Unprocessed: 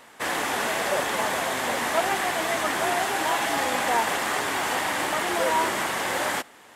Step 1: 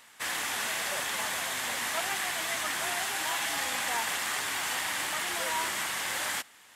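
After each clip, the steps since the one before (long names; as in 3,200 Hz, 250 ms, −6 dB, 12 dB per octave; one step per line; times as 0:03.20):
guitar amp tone stack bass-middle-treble 5-5-5
level +5.5 dB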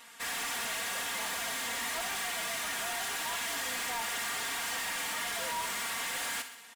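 comb filter 4.3 ms, depth 91%
soft clipping −33 dBFS, distortion −8 dB
feedback echo with a high-pass in the loop 63 ms, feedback 58%, level −10.5 dB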